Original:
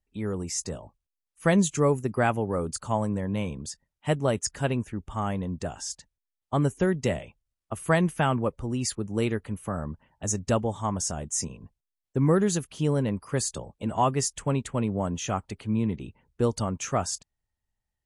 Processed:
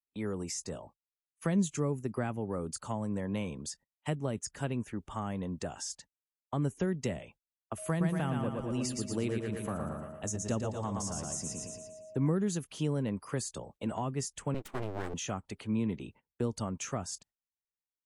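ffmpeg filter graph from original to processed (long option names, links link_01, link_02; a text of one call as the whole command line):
ffmpeg -i in.wav -filter_complex "[0:a]asettb=1/sr,asplit=3[link_01][link_02][link_03];[link_01]atrim=end=7.784[link_04];[link_02]atrim=start=7.78:end=12.27,asetpts=PTS-STARTPTS,afade=type=in:duration=0.004:curve=qsin,afade=type=out:start_time=4.486:duration=0.004:curve=qsin,aeval=exprs='val(0)+0.00891*sin(2*PI*630*n/s)':channel_layout=same,aecho=1:1:115|230|345|460|575|690:0.631|0.303|0.145|0.0698|0.0335|0.0161,atrim=end_sample=198009[link_05];[link_03]atrim=start=12.266[link_06];[link_04][link_05]acrossfade=duration=0.004:curve1=hsin:curve2=qsin[link_07];[link_07][link_06]acrossfade=duration=0.004:curve1=qsin:curve2=hsin,asettb=1/sr,asplit=3[link_08][link_09][link_10];[link_08]atrim=end=14.544[link_11];[link_09]atrim=start=14.54:end=15.14,asetpts=PTS-STARTPTS,afade=type=in:duration=0.004:curve=qsin,afade=type=out:start_time=0.596:duration=0.004:curve=qsin,equalizer=frequency=4100:width=0.52:gain=-5.5,aeval=exprs='abs(val(0))':channel_layout=same[link_12];[link_10]atrim=start=15.136[link_13];[link_11][link_12]acrossfade=duration=0.004:curve1=hsin:curve2=qsin[link_14];[link_14][link_13]acrossfade=duration=0.004:curve1=qsin:curve2=hsin,agate=range=-21dB:threshold=-50dB:ratio=16:detection=peak,lowshelf=frequency=140:gain=-11,acrossover=split=280[link_15][link_16];[link_16]acompressor=threshold=-35dB:ratio=6[link_17];[link_15][link_17]amix=inputs=2:normalize=0,volume=-1dB" out.wav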